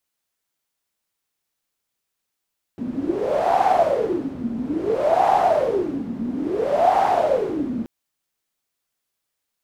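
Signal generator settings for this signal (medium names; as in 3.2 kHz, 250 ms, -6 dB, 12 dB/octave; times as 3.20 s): wind-like swept noise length 5.08 s, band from 230 Hz, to 780 Hz, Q 11, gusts 3, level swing 10 dB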